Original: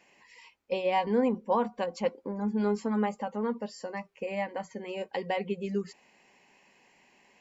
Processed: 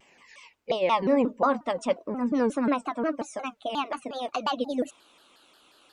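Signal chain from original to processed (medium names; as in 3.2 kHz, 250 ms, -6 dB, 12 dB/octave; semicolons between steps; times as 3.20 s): gliding tape speed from 100% -> 150%; vibrato with a chosen wave saw down 5.6 Hz, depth 250 cents; trim +3.5 dB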